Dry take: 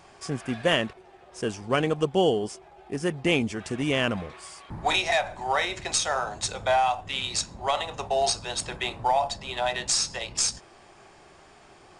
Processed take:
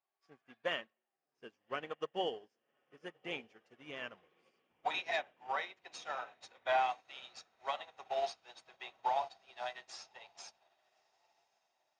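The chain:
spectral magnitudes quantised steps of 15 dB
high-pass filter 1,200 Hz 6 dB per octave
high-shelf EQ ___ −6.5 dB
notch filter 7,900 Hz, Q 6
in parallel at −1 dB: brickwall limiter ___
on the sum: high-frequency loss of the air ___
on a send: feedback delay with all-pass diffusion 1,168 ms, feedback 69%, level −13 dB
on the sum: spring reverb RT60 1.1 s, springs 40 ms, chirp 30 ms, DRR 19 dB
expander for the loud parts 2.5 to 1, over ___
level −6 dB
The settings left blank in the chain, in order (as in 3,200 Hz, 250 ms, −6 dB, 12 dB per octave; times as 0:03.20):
3,500 Hz, −22.5 dBFS, 100 metres, −44 dBFS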